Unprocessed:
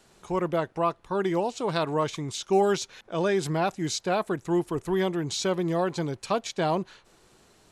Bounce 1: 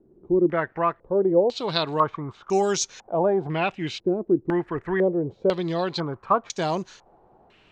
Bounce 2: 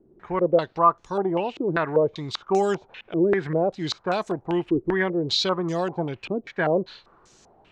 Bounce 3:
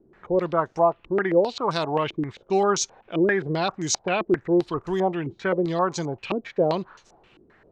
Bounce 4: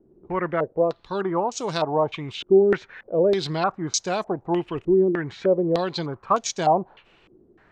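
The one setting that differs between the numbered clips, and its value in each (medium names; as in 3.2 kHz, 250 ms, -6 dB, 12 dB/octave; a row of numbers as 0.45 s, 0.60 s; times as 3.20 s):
step-sequenced low-pass, rate: 2 Hz, 5.1 Hz, 7.6 Hz, 3.3 Hz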